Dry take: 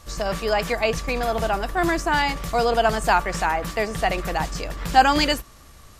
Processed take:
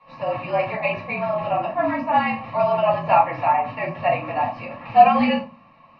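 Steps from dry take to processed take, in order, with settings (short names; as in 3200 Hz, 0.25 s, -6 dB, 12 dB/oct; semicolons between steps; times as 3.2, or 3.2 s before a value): bell 2000 Hz -8 dB 0.39 oct; fixed phaser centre 2300 Hz, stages 8; mistuned SSB -55 Hz 240–3100 Hz; reverb RT60 0.35 s, pre-delay 4 ms, DRR -6.5 dB; gain -3.5 dB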